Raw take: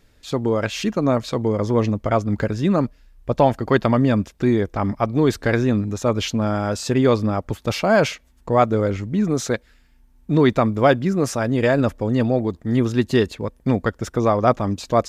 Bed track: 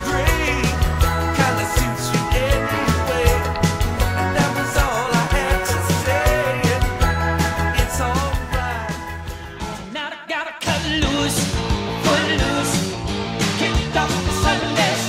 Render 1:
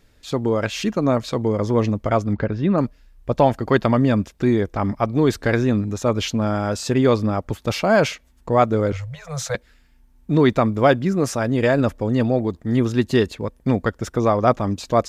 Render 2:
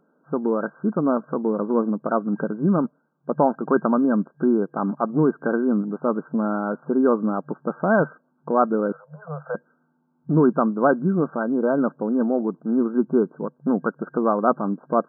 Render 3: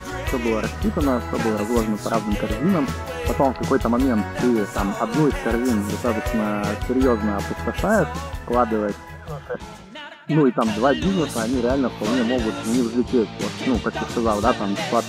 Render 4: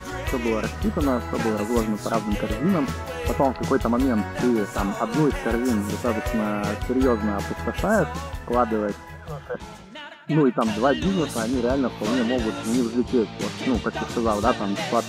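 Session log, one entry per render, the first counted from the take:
2.33–2.78 air absorption 240 m; 8.92–9.55 Chebyshev band-stop 150–490 Hz, order 5
FFT band-pass 140–1600 Hz; dynamic EQ 610 Hz, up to -4 dB, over -29 dBFS, Q 1.5
add bed track -9.5 dB
gain -2 dB

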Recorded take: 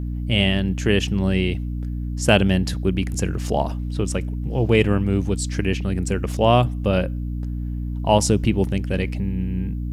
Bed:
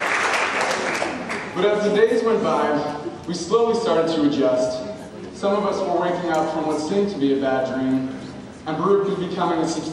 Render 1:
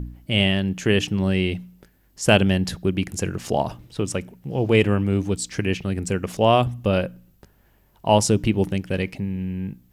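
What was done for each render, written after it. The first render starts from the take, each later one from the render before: de-hum 60 Hz, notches 5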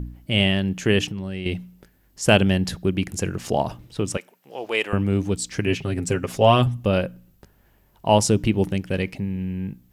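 1.05–1.46 compressor 10:1, threshold -26 dBFS; 4.17–4.93 HPF 670 Hz; 5.66–6.77 comb 7.5 ms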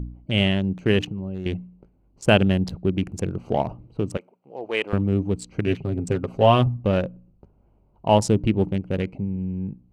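Wiener smoothing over 25 samples; high shelf 4600 Hz -7.5 dB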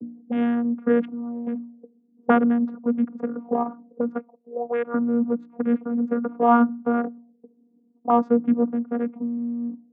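vocoder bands 16, saw 237 Hz; envelope low-pass 330–1400 Hz up, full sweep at -25.5 dBFS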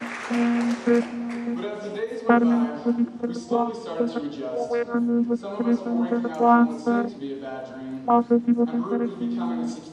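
add bed -13 dB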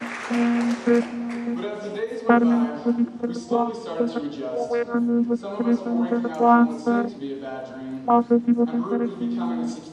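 gain +1 dB

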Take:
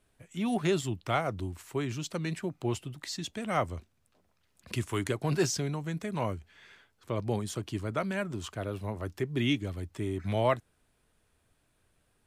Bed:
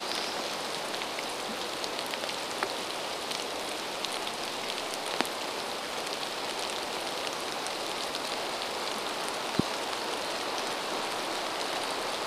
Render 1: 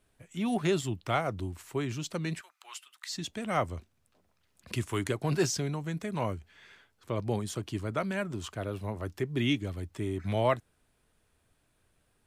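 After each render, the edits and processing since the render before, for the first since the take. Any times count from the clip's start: 2.41–3.1 Chebyshev high-pass 1200 Hz, order 3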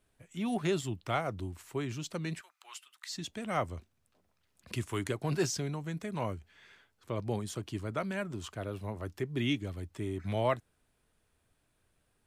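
gain -3 dB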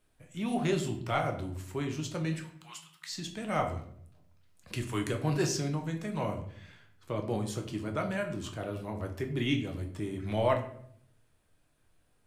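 shoebox room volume 110 m³, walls mixed, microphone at 0.57 m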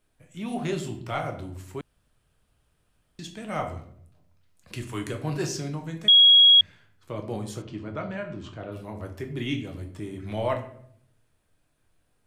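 1.81–3.19 room tone; 6.08–6.61 bleep 3310 Hz -11 dBFS; 7.62–8.72 air absorption 140 m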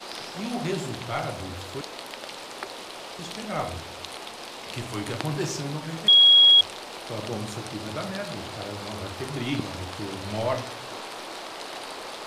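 add bed -4.5 dB

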